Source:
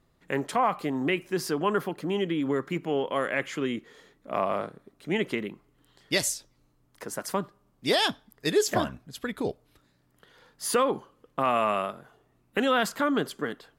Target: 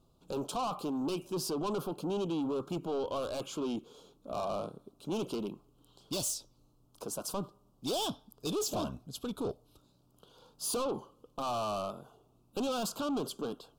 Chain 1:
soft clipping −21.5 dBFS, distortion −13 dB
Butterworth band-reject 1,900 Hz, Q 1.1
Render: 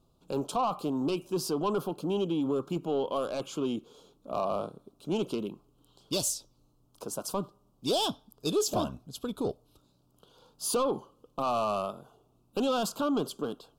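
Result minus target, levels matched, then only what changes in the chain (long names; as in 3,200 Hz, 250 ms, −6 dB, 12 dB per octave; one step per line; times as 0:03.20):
soft clipping: distortion −7 dB
change: soft clipping −30 dBFS, distortion −6 dB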